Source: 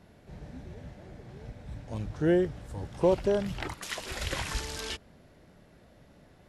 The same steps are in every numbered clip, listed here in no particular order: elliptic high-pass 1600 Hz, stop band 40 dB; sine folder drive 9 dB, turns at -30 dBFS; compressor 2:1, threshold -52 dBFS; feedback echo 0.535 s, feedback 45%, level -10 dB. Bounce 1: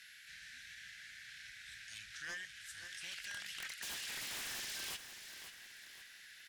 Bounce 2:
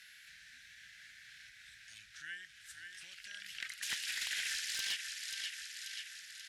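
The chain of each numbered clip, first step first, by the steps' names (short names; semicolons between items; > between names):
elliptic high-pass > sine folder > compressor > feedback echo; feedback echo > compressor > elliptic high-pass > sine folder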